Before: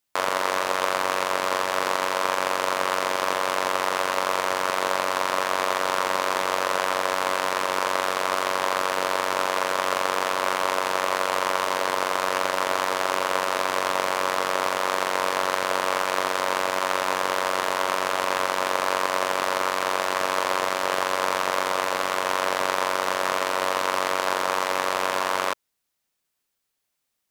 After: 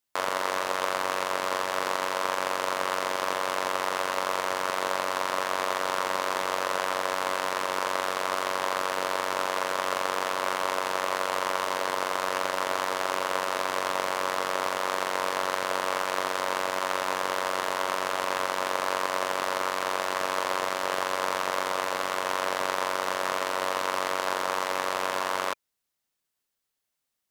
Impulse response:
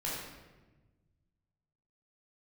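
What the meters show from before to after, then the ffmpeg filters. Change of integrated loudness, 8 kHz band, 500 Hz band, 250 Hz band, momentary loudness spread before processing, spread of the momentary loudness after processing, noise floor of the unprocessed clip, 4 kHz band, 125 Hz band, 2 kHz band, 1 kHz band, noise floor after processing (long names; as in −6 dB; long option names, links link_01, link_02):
−4.0 dB, −4.0 dB, −4.0 dB, −4.0 dB, 1 LU, 1 LU, −78 dBFS, −4.0 dB, −4.0 dB, −4.0 dB, −4.0 dB, −82 dBFS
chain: -af "bandreject=frequency=2400:width=27,volume=-4dB"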